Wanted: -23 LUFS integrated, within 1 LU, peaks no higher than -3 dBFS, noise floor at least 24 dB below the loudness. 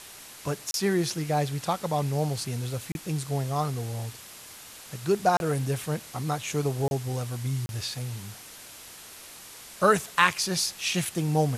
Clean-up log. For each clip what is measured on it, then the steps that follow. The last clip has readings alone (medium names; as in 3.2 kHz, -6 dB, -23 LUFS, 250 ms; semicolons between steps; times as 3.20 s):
dropouts 5; longest dropout 31 ms; noise floor -46 dBFS; noise floor target -52 dBFS; loudness -28.0 LUFS; peak level -5.5 dBFS; loudness target -23.0 LUFS
-> interpolate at 0.71/2.92/5.37/6.88/7.66 s, 31 ms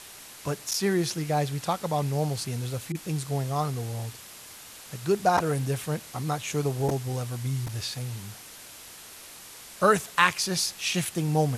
dropouts 0; noise floor -46 dBFS; noise floor target -52 dBFS
-> noise reduction 6 dB, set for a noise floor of -46 dBFS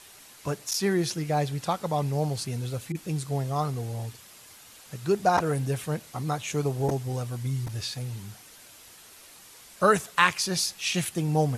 noise floor -51 dBFS; noise floor target -52 dBFS
-> noise reduction 6 dB, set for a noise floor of -51 dBFS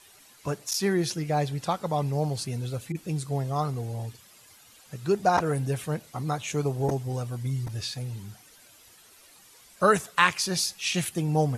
noise floor -55 dBFS; loudness -28.0 LUFS; peak level -5.5 dBFS; loudness target -23.0 LUFS
-> trim +5 dB; peak limiter -3 dBFS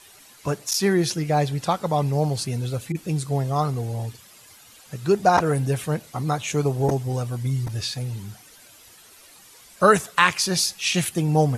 loudness -23.0 LUFS; peak level -3.0 dBFS; noise floor -50 dBFS